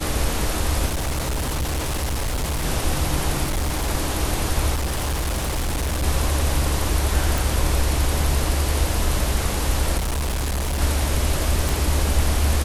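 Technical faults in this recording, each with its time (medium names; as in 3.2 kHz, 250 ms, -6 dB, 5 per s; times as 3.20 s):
0.87–2.65 s: clipped -20.5 dBFS
3.43–3.90 s: clipped -19 dBFS
4.74–6.04 s: clipped -20 dBFS
7.38 s: pop
9.97–10.81 s: clipped -20.5 dBFS
11.69 s: pop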